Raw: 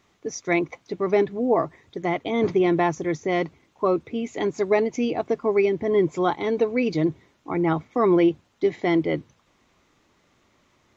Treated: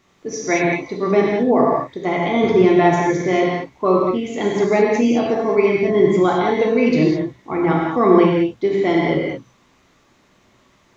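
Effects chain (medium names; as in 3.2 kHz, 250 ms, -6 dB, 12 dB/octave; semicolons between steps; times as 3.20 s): gated-style reverb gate 240 ms flat, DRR -3.5 dB; trim +2 dB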